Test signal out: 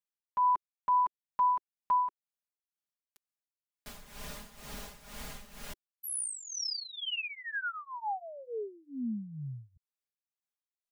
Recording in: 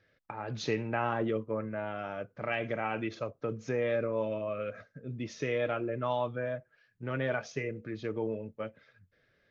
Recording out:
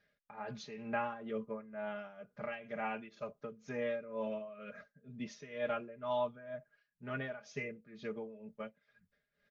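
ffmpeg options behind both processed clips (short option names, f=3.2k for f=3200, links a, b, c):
-af "equalizer=f=370:t=o:w=0.22:g=-11.5,aecho=1:1:4.9:0.93,tremolo=f=2.1:d=0.79,volume=-6dB"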